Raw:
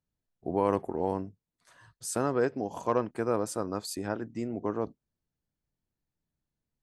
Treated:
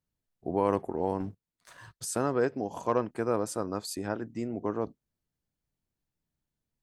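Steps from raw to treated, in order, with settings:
0:01.20–0:02.05: leveller curve on the samples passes 2

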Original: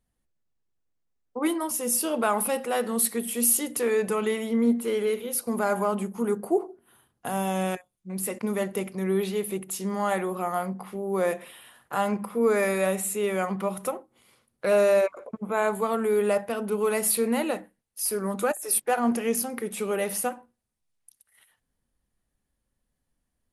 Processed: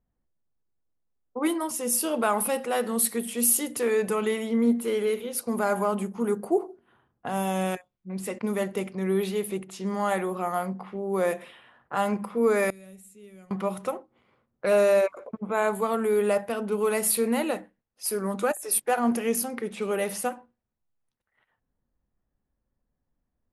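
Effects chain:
low-pass that shuts in the quiet parts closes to 1,300 Hz, open at −23.5 dBFS
0:12.70–0:13.51: guitar amp tone stack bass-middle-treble 10-0-1

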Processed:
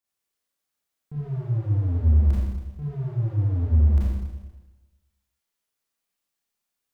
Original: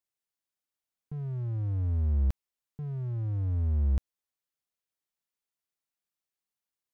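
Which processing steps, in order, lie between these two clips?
four-comb reverb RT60 1.2 s, combs from 27 ms, DRR −7.5 dB

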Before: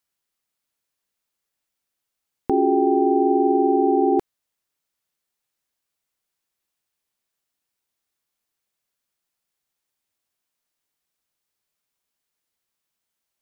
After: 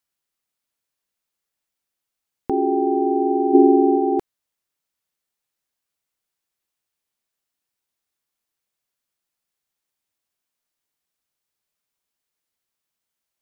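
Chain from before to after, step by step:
0:03.53–0:03.97: parametric band 200 Hz → 67 Hz +14 dB 2.7 octaves
level −1.5 dB

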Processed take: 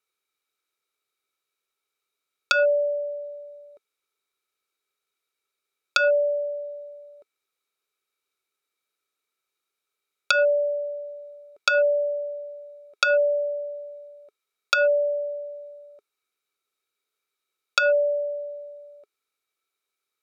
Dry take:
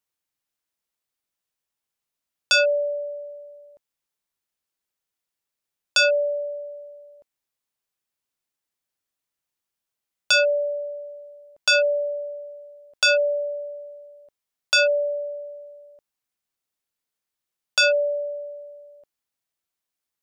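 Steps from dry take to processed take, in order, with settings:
treble cut that deepens with the level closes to 1,100 Hz, closed at −18.5 dBFS
low-shelf EQ 430 Hz −10 dB
hollow resonant body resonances 410/1,300/2,300/3,800 Hz, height 16 dB, ringing for 30 ms

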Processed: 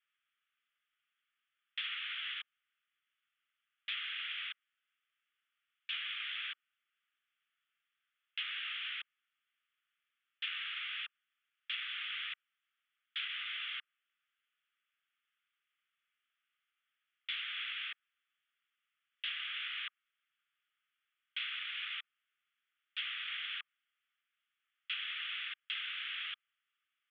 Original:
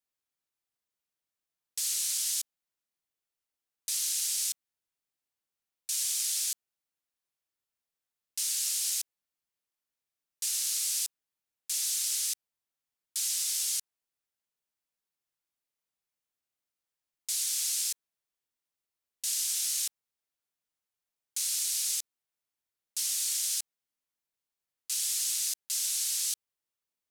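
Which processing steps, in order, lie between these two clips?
Chebyshev band-pass filter 1,200–3,400 Hz, order 5
treble cut that deepens with the level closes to 2,300 Hz, closed at −45.5 dBFS
level +12.5 dB

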